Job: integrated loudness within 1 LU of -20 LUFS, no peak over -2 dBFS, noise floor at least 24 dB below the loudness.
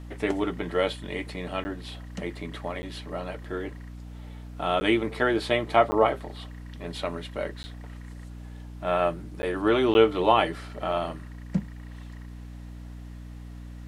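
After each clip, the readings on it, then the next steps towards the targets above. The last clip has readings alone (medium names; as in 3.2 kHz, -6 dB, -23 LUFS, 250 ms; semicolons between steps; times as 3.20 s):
dropouts 7; longest dropout 10 ms; hum 60 Hz; highest harmonic 300 Hz; hum level -38 dBFS; loudness -27.0 LUFS; peak level -5.5 dBFS; loudness target -20.0 LUFS
-> interpolate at 1.64/2.82/4.80/5.91/7.63/9.42/9.94 s, 10 ms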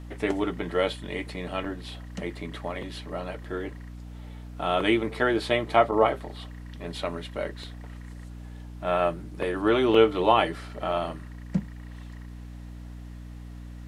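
dropouts 0; hum 60 Hz; highest harmonic 300 Hz; hum level -38 dBFS
-> de-hum 60 Hz, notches 5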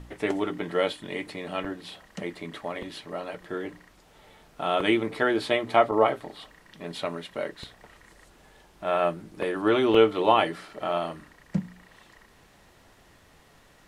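hum not found; loudness -27.0 LUFS; peak level -5.5 dBFS; loudness target -20.0 LUFS
-> trim +7 dB; peak limiter -2 dBFS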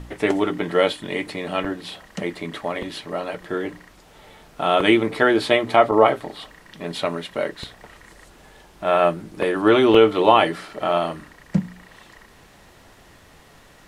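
loudness -20.5 LUFS; peak level -2.0 dBFS; noise floor -50 dBFS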